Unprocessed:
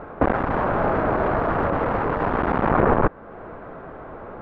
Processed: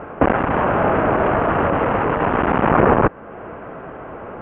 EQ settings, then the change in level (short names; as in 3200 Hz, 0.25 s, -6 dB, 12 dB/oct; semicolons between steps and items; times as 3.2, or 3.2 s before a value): HPF 77 Hz 6 dB/oct; synth low-pass 2900 Hz, resonance Q 3.9; air absorption 460 m; +5.5 dB